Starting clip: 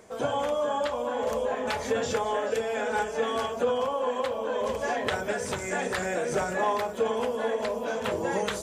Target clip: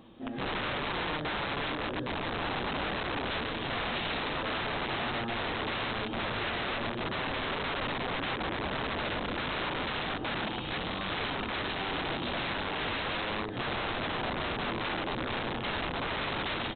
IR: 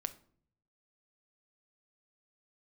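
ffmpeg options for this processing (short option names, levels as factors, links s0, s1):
-filter_complex "[0:a]asplit=2[s0][s1];[s1]asoftclip=type=tanh:threshold=0.0237,volume=0.562[s2];[s0][s2]amix=inputs=2:normalize=0,asetrate=22712,aresample=44100,bandreject=f=50:t=h:w=6,bandreject=f=100:t=h:w=6,bandreject=f=150:t=h:w=6,bandreject=f=200:t=h:w=6,bandreject=f=250:t=h:w=6,bandreject=f=300:t=h:w=6,bandreject=f=350:t=h:w=6,bandreject=f=400:t=h:w=6,bandreject=f=450:t=h:w=6,aecho=1:1:131|143|176|282:0.133|0.376|0.266|0.112[s3];[1:a]atrim=start_sample=2205,afade=t=out:st=0.28:d=0.01,atrim=end_sample=12789[s4];[s3][s4]afir=irnorm=-1:irlink=0,aresample=8000,aeval=exprs='(mod(18.8*val(0)+1,2)-1)/18.8':c=same,aresample=44100,volume=0.708"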